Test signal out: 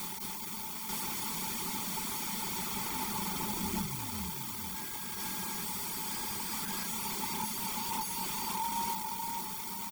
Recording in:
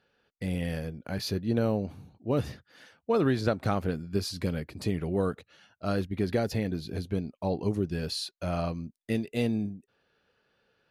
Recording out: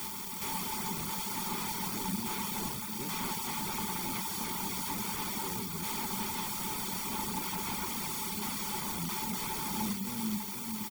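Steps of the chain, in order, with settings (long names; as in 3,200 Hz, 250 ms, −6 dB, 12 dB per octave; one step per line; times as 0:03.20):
peak hold with a decay on every bin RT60 0.55 s
in parallel at −11.5 dB: bit-depth reduction 6 bits, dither triangular
on the sum: high-shelf EQ 11,000 Hz +12 dB
brickwall limiter −18 dBFS
delay that swaps between a low-pass and a high-pass 236 ms, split 1,300 Hz, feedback 62%, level −8 dB
wrap-around overflow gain 32 dB
comb filter 0.9 ms, depth 49%
reverb reduction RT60 0.62 s
parametric band 390 Hz +9 dB 0.31 octaves
mains-hum notches 50/100/150/200 Hz
hollow resonant body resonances 200/880 Hz, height 17 dB, ringing for 65 ms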